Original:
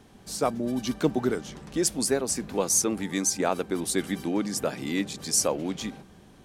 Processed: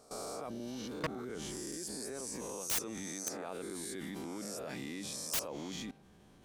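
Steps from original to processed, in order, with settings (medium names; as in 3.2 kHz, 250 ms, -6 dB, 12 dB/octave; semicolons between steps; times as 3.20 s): reverse spectral sustain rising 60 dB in 0.96 s; level held to a coarse grid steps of 19 dB; wavefolder -23 dBFS; trim -4 dB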